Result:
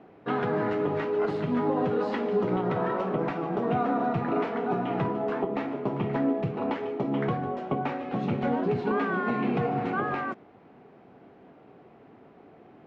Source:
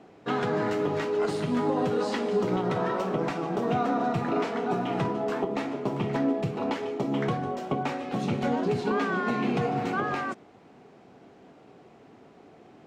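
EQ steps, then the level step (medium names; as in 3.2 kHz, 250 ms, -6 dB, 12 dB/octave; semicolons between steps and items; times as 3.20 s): low-pass 2.5 kHz 12 dB/octave; 0.0 dB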